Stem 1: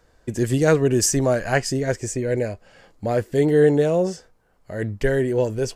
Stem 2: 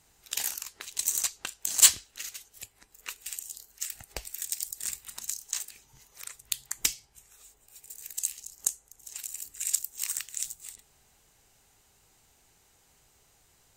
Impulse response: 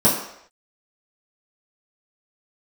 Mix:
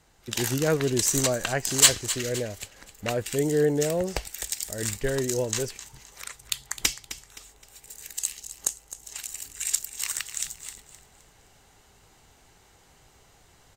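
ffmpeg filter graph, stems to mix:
-filter_complex "[0:a]volume=-12dB[link_01];[1:a]lowpass=frequency=3400:poles=1,bandreject=frequency=2500:width=22,acontrast=81,volume=-2.5dB,asplit=2[link_02][link_03];[link_03]volume=-13.5dB,aecho=0:1:260|520|780|1040|1300:1|0.35|0.122|0.0429|0.015[link_04];[link_01][link_02][link_04]amix=inputs=3:normalize=0,dynaudnorm=framelen=110:gausssize=7:maxgain=5dB"

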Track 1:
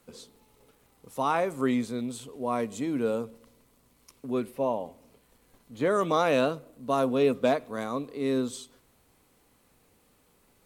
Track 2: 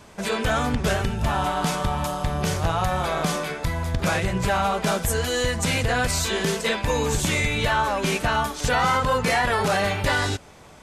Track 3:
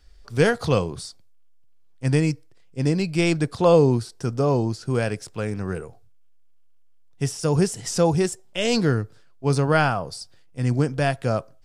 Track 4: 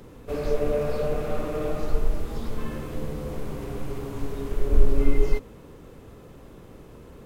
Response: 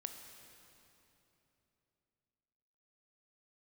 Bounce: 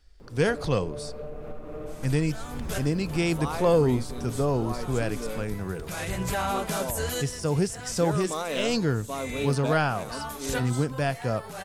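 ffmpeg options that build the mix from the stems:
-filter_complex "[0:a]highshelf=frequency=4400:gain=11,adelay=2200,volume=-8dB[link_01];[1:a]aemphasis=mode=production:type=50fm,alimiter=limit=-14.5dB:level=0:latency=1:release=15,adynamicequalizer=threshold=0.0158:dfrequency=2100:dqfactor=0.7:tfrequency=2100:tqfactor=0.7:attack=5:release=100:ratio=0.375:range=2:mode=cutabove:tftype=highshelf,adelay=1850,volume=-4.5dB[link_02];[2:a]acontrast=26,volume=-9.5dB,asplit=2[link_03][link_04];[3:a]highshelf=frequency=2600:gain=-11,acompressor=threshold=-30dB:ratio=12,adelay=200,volume=-2.5dB[link_05];[link_04]apad=whole_len=558935[link_06];[link_02][link_06]sidechaincompress=threshold=-38dB:ratio=10:attack=16:release=481[link_07];[link_01][link_07][link_03][link_05]amix=inputs=4:normalize=0"

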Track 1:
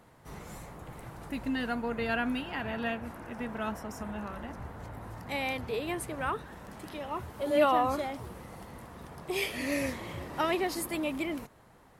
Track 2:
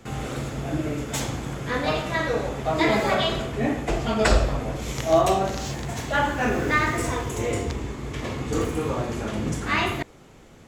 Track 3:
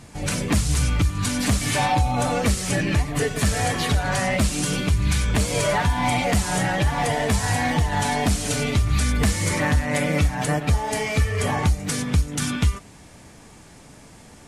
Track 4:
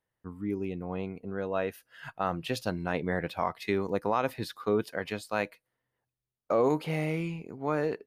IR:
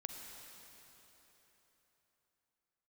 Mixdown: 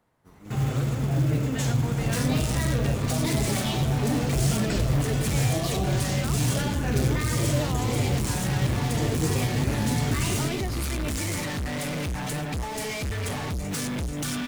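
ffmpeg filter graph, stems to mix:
-filter_complex "[0:a]dynaudnorm=framelen=180:gausssize=7:maxgain=10dB,volume=-12dB[link_01];[1:a]equalizer=frequency=120:width_type=o:width=0.85:gain=13.5,alimiter=limit=-15dB:level=0:latency=1:release=32,flanger=delay=3.8:depth=4:regen=58:speed=1.9:shape=sinusoidal,adelay=450,volume=2.5dB[link_02];[2:a]volume=29.5dB,asoftclip=hard,volume=-29.5dB,adelay=1850,volume=2dB[link_03];[3:a]volume=-14dB[link_04];[link_01][link_02][link_03][link_04]amix=inputs=4:normalize=0,acrossover=split=440|3000[link_05][link_06][link_07];[link_06]acompressor=threshold=-34dB:ratio=6[link_08];[link_05][link_08][link_07]amix=inputs=3:normalize=0,acrusher=bits=6:mode=log:mix=0:aa=0.000001"

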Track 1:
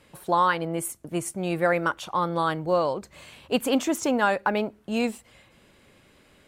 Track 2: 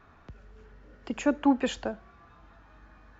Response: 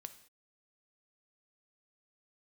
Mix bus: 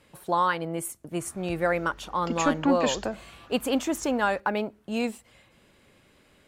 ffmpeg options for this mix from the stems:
-filter_complex "[0:a]volume=-2.5dB[link_01];[1:a]equalizer=frequency=6200:width=0.72:gain=7.5,asoftclip=type=tanh:threshold=-19dB,adelay=1200,volume=2.5dB[link_02];[link_01][link_02]amix=inputs=2:normalize=0"

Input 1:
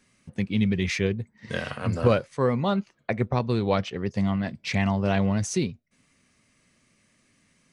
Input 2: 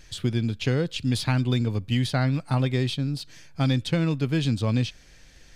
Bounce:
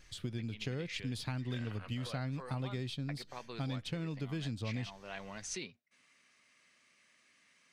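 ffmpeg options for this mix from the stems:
ffmpeg -i stem1.wav -i stem2.wav -filter_complex "[0:a]acompressor=threshold=-34dB:ratio=2,bandpass=frequency=2400:width_type=q:width=0.55:csg=0,volume=0.5dB[link_01];[1:a]acompressor=threshold=-24dB:ratio=6,volume=-10.5dB,asplit=2[link_02][link_03];[link_03]apad=whole_len=340724[link_04];[link_01][link_04]sidechaincompress=threshold=-48dB:ratio=4:attack=23:release=646[link_05];[link_05][link_02]amix=inputs=2:normalize=0" out.wav

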